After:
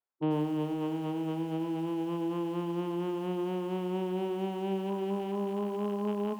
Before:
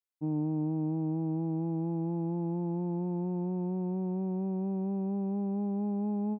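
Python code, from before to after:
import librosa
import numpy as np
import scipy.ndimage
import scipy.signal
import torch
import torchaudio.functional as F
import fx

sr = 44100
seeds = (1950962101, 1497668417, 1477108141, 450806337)

p1 = fx.rattle_buzz(x, sr, strikes_db=-40.0, level_db=-37.0)
p2 = fx.highpass(p1, sr, hz=490.0, slope=6)
p3 = fx.dereverb_blind(p2, sr, rt60_s=1.8)
p4 = scipy.signal.sosfilt(scipy.signal.butter(2, 1000.0, 'lowpass', fs=sr, output='sos'), p3)
p5 = fx.rider(p4, sr, range_db=10, speed_s=0.5)
p6 = p4 + (p5 * 10.0 ** (1.5 / 20.0))
p7 = fx.formant_shift(p6, sr, semitones=3)
p8 = p7 + fx.echo_feedback(p7, sr, ms=293, feedback_pct=47, wet_db=-14.0, dry=0)
p9 = fx.echo_crushed(p8, sr, ms=93, feedback_pct=35, bits=9, wet_db=-11.5)
y = p9 * 10.0 ** (6.0 / 20.0)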